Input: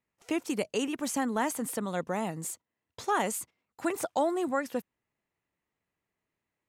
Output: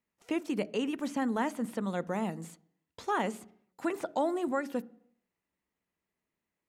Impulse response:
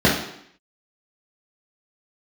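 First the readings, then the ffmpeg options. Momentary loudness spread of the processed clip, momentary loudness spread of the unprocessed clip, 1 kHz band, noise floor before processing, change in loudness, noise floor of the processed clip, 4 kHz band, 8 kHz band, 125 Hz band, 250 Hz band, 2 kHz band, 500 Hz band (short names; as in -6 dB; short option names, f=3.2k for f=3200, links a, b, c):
10 LU, 9 LU, -2.5 dB, under -85 dBFS, -1.5 dB, under -85 dBFS, -4.0 dB, -13.5 dB, 0.0 dB, 0.0 dB, -2.5 dB, -2.0 dB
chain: -filter_complex "[0:a]acrossover=split=4300[a][b];[b]acompressor=threshold=-51dB:ratio=4:attack=1:release=60[c];[a][c]amix=inputs=2:normalize=0,asplit=2[d][e];[1:a]atrim=start_sample=2205,lowshelf=f=500:g=9[f];[e][f]afir=irnorm=-1:irlink=0,volume=-42.5dB[g];[d][g]amix=inputs=2:normalize=0,volume=-2.5dB"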